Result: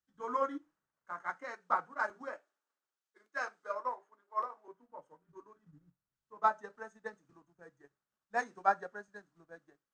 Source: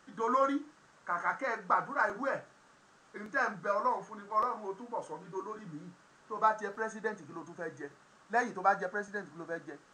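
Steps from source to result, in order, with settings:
0:02.32–0:04.68: high-pass filter 300 Hz 24 dB per octave
transient designer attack +2 dB, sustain −8 dB
multiband upward and downward expander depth 100%
level −9 dB

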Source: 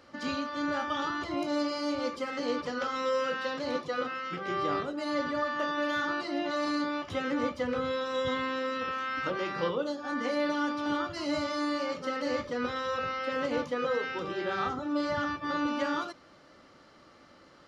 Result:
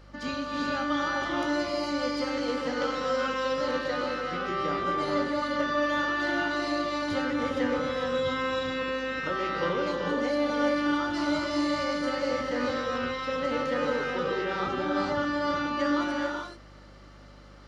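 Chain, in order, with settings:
reverb whose tail is shaped and stops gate 460 ms rising, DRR 0 dB
mains hum 50 Hz, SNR 23 dB

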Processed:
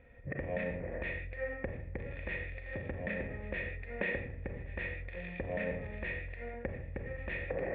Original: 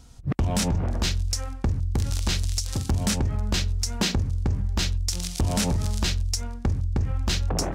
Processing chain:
convolution reverb, pre-delay 31 ms, DRR 2.5 dB
downward compressor, threshold −27 dBFS, peak gain reduction 9.5 dB
formant resonators in series e
parametric band 2,100 Hz +9.5 dB 1.1 octaves
feedback echo with a high-pass in the loop 1,136 ms, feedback 63%, high-pass 440 Hz, level −17 dB
level +8 dB

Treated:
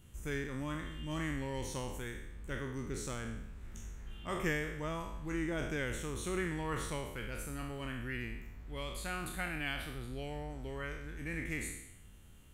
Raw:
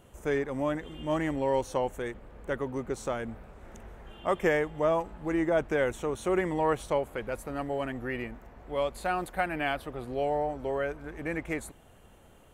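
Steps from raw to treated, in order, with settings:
peak hold with a decay on every bin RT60 0.82 s
guitar amp tone stack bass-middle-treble 6-0-2
level +12.5 dB

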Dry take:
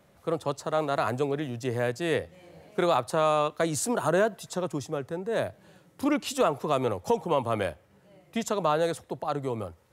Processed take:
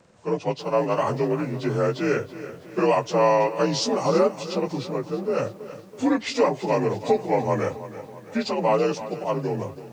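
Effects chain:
partials spread apart or drawn together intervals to 87%
feedback echo at a low word length 327 ms, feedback 55%, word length 9 bits, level −14 dB
level +6 dB

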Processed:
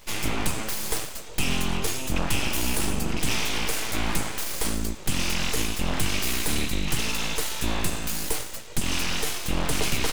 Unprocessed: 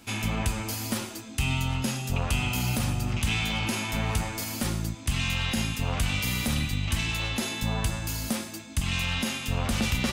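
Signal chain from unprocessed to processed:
dynamic equaliser 9,500 Hz, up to +5 dB, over −49 dBFS, Q 1.1
full-wave rectification
level +4 dB

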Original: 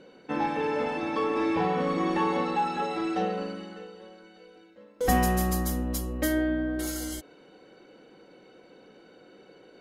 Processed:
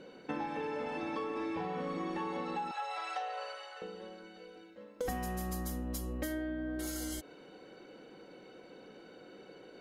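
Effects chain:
0:02.71–0:03.82: Butterworth high-pass 590 Hz 36 dB per octave
downward compressor 6 to 1, threshold −35 dBFS, peak gain reduction 15.5 dB

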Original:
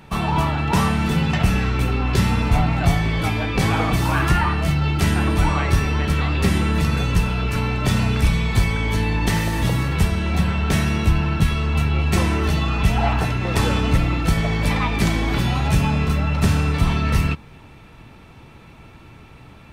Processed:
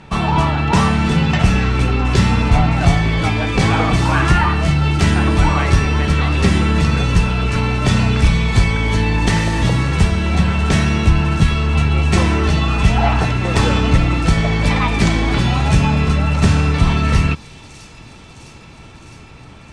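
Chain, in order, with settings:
low-pass filter 8,500 Hz 24 dB per octave
delay with a high-pass on its return 659 ms, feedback 71%, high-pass 4,800 Hz, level −12 dB
level +4.5 dB

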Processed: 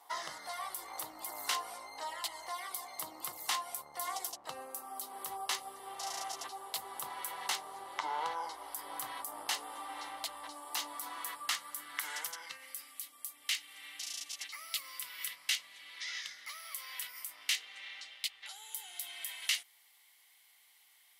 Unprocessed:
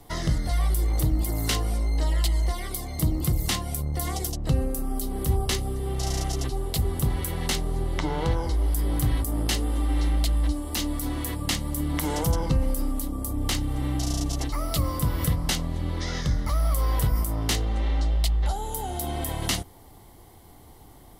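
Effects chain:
high-pass filter sweep 940 Hz → 2,300 Hz, 0:10.88–0:12.97
level −7.5 dB

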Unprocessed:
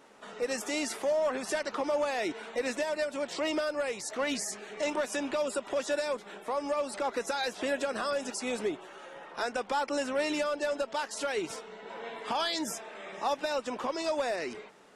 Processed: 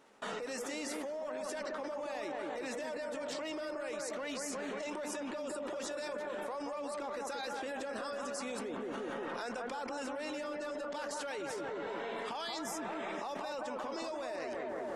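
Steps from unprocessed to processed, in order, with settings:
bucket-brigade delay 179 ms, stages 2,048, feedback 59%, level −4 dB
output level in coarse steps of 24 dB
level +8.5 dB

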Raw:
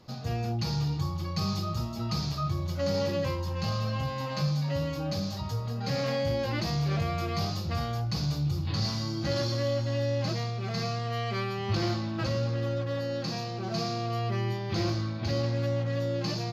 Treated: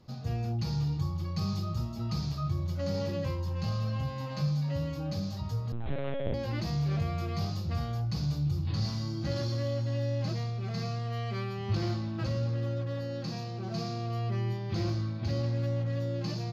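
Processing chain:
0:05.72–0:06.34: linear-prediction vocoder at 8 kHz pitch kept
low-shelf EQ 260 Hz +8 dB
level −7 dB

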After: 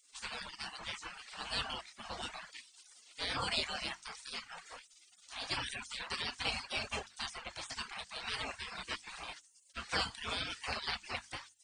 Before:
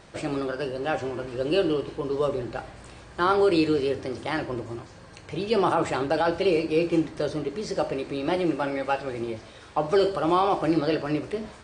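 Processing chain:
gate on every frequency bin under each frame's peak −25 dB weak
mains-hum notches 50/100/150/200/250/300/350 Hz
reverb reduction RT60 0.7 s
level +3.5 dB

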